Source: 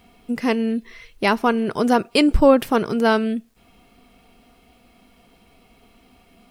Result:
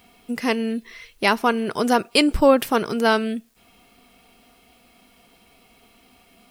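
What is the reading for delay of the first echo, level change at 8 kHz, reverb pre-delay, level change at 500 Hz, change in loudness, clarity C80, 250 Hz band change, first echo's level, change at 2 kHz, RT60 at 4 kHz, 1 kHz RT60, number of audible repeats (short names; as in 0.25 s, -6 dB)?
none, +4.5 dB, none, -1.5 dB, -1.0 dB, none, -3.0 dB, none, +1.5 dB, none, none, none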